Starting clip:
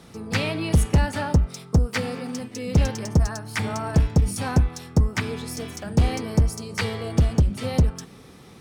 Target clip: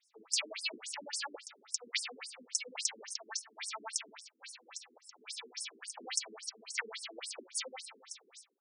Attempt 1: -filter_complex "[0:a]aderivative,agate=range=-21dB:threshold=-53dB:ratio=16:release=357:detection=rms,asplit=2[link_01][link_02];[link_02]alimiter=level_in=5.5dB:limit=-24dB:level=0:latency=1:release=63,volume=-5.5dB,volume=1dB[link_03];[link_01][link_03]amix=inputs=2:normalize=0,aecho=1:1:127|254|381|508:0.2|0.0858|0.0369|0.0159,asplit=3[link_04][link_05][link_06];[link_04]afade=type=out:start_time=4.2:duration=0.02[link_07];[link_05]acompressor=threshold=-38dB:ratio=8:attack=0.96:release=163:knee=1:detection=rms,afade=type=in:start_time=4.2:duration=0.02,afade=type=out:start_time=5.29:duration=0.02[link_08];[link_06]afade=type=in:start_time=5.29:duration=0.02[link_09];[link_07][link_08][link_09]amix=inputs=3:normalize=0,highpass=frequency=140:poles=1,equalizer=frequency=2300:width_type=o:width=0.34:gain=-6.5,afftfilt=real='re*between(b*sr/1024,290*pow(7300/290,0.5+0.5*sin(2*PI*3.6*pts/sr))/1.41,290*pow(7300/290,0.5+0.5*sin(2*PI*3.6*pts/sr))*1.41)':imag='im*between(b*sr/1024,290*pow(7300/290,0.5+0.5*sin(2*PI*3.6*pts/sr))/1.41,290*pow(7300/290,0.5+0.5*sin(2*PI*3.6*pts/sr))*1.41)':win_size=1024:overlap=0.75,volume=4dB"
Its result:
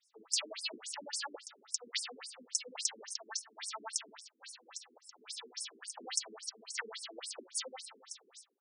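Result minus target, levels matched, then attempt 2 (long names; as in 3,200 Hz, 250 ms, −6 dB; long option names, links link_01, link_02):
2,000 Hz band −3.5 dB
-filter_complex "[0:a]aderivative,agate=range=-21dB:threshold=-53dB:ratio=16:release=357:detection=rms,asplit=2[link_01][link_02];[link_02]alimiter=level_in=5.5dB:limit=-24dB:level=0:latency=1:release=63,volume=-5.5dB,volume=1dB[link_03];[link_01][link_03]amix=inputs=2:normalize=0,aecho=1:1:127|254|381|508:0.2|0.0858|0.0369|0.0159,asplit=3[link_04][link_05][link_06];[link_04]afade=type=out:start_time=4.2:duration=0.02[link_07];[link_05]acompressor=threshold=-38dB:ratio=8:attack=0.96:release=163:knee=1:detection=rms,afade=type=in:start_time=4.2:duration=0.02,afade=type=out:start_time=5.29:duration=0.02[link_08];[link_06]afade=type=in:start_time=5.29:duration=0.02[link_09];[link_07][link_08][link_09]amix=inputs=3:normalize=0,highpass=frequency=140:poles=1,equalizer=frequency=2300:width_type=o:width=0.34:gain=3,afftfilt=real='re*between(b*sr/1024,290*pow(7300/290,0.5+0.5*sin(2*PI*3.6*pts/sr))/1.41,290*pow(7300/290,0.5+0.5*sin(2*PI*3.6*pts/sr))*1.41)':imag='im*between(b*sr/1024,290*pow(7300/290,0.5+0.5*sin(2*PI*3.6*pts/sr))/1.41,290*pow(7300/290,0.5+0.5*sin(2*PI*3.6*pts/sr))*1.41)':win_size=1024:overlap=0.75,volume=4dB"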